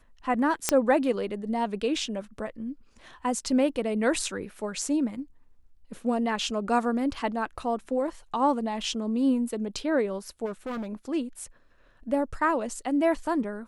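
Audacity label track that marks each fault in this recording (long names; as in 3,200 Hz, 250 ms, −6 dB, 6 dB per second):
0.690000	0.690000	click −5 dBFS
10.450000	10.870000	clipping −30 dBFS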